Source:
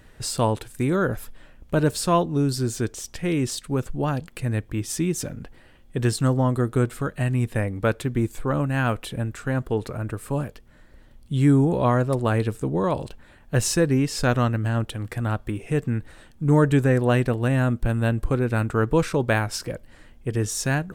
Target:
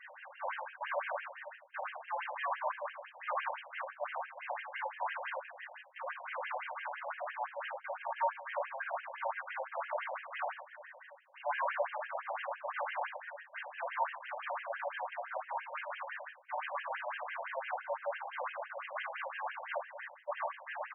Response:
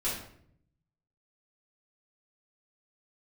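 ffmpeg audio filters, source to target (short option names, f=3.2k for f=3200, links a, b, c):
-filter_complex "[0:a]highpass=340,lowpass=4.5k,areverse,acompressor=threshold=-34dB:ratio=20,areverse,aeval=exprs='(mod(56.2*val(0)+1,2)-1)/56.2':c=same,acrossover=split=1600[a][b];[a]aecho=1:1:81:0.266[c];[b]alimiter=level_in=15dB:limit=-24dB:level=0:latency=1:release=117,volume=-15dB[d];[c][d]amix=inputs=2:normalize=0[e];[1:a]atrim=start_sample=2205,asetrate=70560,aresample=44100[f];[e][f]afir=irnorm=-1:irlink=0,afftfilt=real='re*between(b*sr/1024,690*pow(2300/690,0.5+0.5*sin(2*PI*5.9*pts/sr))/1.41,690*pow(2300/690,0.5+0.5*sin(2*PI*5.9*pts/sr))*1.41)':imag='im*between(b*sr/1024,690*pow(2300/690,0.5+0.5*sin(2*PI*5.9*pts/sr))/1.41,690*pow(2300/690,0.5+0.5*sin(2*PI*5.9*pts/sr))*1.41)':win_size=1024:overlap=0.75,volume=10dB"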